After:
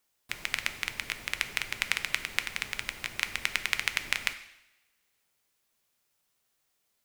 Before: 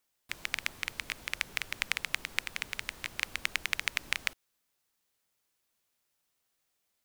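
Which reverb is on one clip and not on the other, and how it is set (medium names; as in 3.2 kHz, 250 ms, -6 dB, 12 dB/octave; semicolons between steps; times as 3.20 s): two-slope reverb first 0.83 s, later 2.5 s, from -28 dB, DRR 9 dB; trim +2.5 dB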